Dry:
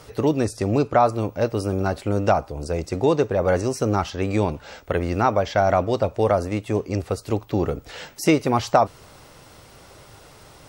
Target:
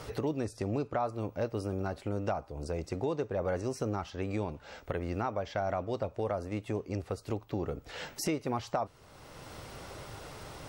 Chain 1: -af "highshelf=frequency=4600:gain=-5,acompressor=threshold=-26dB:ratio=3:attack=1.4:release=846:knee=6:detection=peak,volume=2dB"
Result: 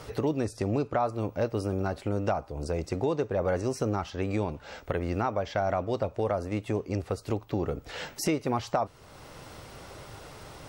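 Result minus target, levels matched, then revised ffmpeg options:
downward compressor: peak gain reduction −4.5 dB
-af "highshelf=frequency=4600:gain=-5,acompressor=threshold=-33dB:ratio=3:attack=1.4:release=846:knee=6:detection=peak,volume=2dB"

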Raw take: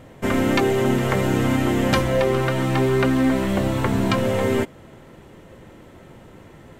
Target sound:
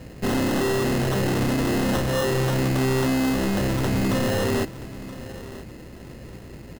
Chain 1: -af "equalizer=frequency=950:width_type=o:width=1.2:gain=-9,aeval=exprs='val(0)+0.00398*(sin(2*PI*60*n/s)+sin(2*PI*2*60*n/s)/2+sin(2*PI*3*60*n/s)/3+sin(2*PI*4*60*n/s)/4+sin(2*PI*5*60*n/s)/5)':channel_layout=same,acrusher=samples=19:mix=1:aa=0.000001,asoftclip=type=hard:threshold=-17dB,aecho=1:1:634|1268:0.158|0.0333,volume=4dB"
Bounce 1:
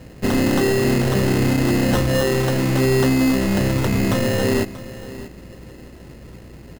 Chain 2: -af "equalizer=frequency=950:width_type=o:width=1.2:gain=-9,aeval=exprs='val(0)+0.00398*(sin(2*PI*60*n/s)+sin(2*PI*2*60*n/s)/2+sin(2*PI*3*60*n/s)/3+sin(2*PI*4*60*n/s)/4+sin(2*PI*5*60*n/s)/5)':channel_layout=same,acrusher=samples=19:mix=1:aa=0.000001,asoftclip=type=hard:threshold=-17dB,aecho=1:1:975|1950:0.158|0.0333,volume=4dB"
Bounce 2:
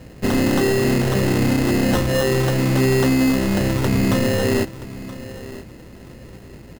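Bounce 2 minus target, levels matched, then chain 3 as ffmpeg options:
hard clipping: distortion −8 dB
-af "equalizer=frequency=950:width_type=o:width=1.2:gain=-9,aeval=exprs='val(0)+0.00398*(sin(2*PI*60*n/s)+sin(2*PI*2*60*n/s)/2+sin(2*PI*3*60*n/s)/3+sin(2*PI*4*60*n/s)/4+sin(2*PI*5*60*n/s)/5)':channel_layout=same,acrusher=samples=19:mix=1:aa=0.000001,asoftclip=type=hard:threshold=-24.5dB,aecho=1:1:975|1950:0.158|0.0333,volume=4dB"

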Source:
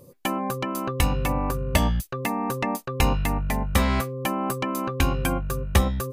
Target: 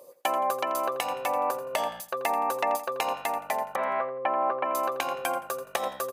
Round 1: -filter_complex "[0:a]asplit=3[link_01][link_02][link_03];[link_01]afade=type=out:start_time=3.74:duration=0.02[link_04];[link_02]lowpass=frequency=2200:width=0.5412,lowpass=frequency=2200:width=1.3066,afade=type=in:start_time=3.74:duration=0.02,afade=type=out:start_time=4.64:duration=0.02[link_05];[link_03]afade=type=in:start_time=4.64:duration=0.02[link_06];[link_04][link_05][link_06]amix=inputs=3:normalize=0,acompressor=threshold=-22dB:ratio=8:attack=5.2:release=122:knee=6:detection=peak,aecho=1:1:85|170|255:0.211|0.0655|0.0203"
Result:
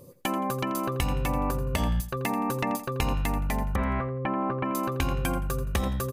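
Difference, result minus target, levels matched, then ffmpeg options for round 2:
500 Hz band −3.5 dB
-filter_complex "[0:a]asplit=3[link_01][link_02][link_03];[link_01]afade=type=out:start_time=3.74:duration=0.02[link_04];[link_02]lowpass=frequency=2200:width=0.5412,lowpass=frequency=2200:width=1.3066,afade=type=in:start_time=3.74:duration=0.02,afade=type=out:start_time=4.64:duration=0.02[link_05];[link_03]afade=type=in:start_time=4.64:duration=0.02[link_06];[link_04][link_05][link_06]amix=inputs=3:normalize=0,acompressor=threshold=-22dB:ratio=8:attack=5.2:release=122:knee=6:detection=peak,highpass=frequency=640:width_type=q:width=2.5,aecho=1:1:85|170|255:0.211|0.0655|0.0203"

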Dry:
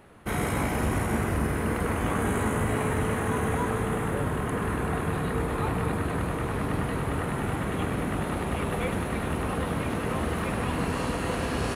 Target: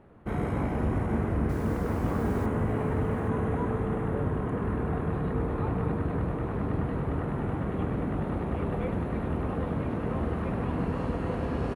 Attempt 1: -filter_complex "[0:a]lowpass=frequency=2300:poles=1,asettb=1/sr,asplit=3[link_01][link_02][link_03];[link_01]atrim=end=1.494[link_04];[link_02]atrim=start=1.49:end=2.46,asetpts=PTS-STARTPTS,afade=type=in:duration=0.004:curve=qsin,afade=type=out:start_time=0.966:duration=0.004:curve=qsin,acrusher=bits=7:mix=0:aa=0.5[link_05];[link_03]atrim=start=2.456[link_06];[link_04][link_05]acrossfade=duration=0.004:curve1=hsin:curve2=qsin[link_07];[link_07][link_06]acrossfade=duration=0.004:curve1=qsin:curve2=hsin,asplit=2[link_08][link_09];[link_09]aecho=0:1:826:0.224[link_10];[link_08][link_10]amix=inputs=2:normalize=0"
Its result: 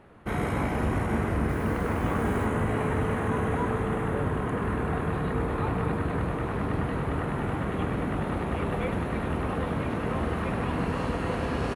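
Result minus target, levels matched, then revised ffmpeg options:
2,000 Hz band +6.0 dB
-filter_complex "[0:a]lowpass=frequency=640:poles=1,asettb=1/sr,asplit=3[link_01][link_02][link_03];[link_01]atrim=end=1.494[link_04];[link_02]atrim=start=1.49:end=2.46,asetpts=PTS-STARTPTS,afade=type=in:duration=0.004:curve=qsin,afade=type=out:start_time=0.966:duration=0.004:curve=qsin,acrusher=bits=7:mix=0:aa=0.5[link_05];[link_03]atrim=start=2.456[link_06];[link_04][link_05]acrossfade=duration=0.004:curve1=hsin:curve2=qsin[link_07];[link_07][link_06]acrossfade=duration=0.004:curve1=qsin:curve2=hsin,asplit=2[link_08][link_09];[link_09]aecho=0:1:826:0.224[link_10];[link_08][link_10]amix=inputs=2:normalize=0"

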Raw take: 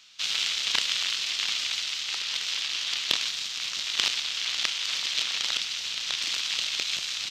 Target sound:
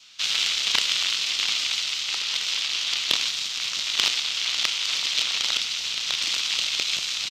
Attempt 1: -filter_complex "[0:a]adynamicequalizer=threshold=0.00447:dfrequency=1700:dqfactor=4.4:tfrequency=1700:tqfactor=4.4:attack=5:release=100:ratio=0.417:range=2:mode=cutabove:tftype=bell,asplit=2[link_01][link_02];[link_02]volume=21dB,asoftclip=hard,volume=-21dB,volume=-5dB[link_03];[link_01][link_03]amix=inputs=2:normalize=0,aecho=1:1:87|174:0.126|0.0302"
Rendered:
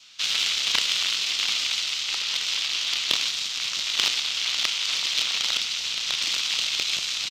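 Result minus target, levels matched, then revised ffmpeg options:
gain into a clipping stage and back: distortion +7 dB
-filter_complex "[0:a]adynamicequalizer=threshold=0.00447:dfrequency=1700:dqfactor=4.4:tfrequency=1700:tqfactor=4.4:attack=5:release=100:ratio=0.417:range=2:mode=cutabove:tftype=bell,asplit=2[link_01][link_02];[link_02]volume=14.5dB,asoftclip=hard,volume=-14.5dB,volume=-5dB[link_03];[link_01][link_03]amix=inputs=2:normalize=0,aecho=1:1:87|174:0.126|0.0302"

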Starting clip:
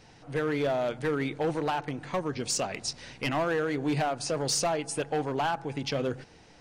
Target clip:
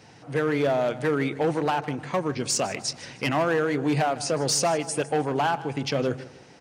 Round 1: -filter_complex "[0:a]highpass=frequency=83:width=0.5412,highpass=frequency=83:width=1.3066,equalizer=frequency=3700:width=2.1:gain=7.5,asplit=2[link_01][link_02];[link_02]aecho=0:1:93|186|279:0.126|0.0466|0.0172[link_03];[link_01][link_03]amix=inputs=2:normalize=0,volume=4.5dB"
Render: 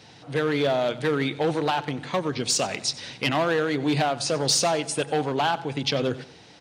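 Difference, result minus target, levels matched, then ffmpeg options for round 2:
echo 62 ms early; 4,000 Hz band +4.5 dB
-filter_complex "[0:a]highpass=frequency=83:width=0.5412,highpass=frequency=83:width=1.3066,equalizer=frequency=3700:width=2.1:gain=-2.5,asplit=2[link_01][link_02];[link_02]aecho=0:1:155|310|465:0.126|0.0466|0.0172[link_03];[link_01][link_03]amix=inputs=2:normalize=0,volume=4.5dB"

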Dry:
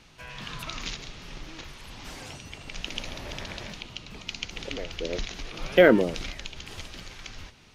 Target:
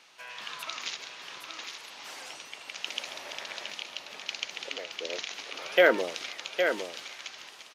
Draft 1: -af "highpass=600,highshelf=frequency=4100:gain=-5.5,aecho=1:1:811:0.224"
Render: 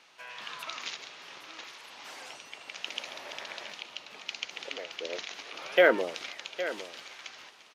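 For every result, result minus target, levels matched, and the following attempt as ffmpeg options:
echo-to-direct −6.5 dB; 8,000 Hz band −4.0 dB
-af "highpass=600,highshelf=frequency=4100:gain=-5.5,aecho=1:1:811:0.473"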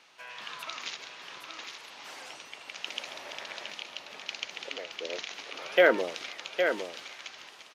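8,000 Hz band −3.5 dB
-af "highpass=600,aecho=1:1:811:0.473"

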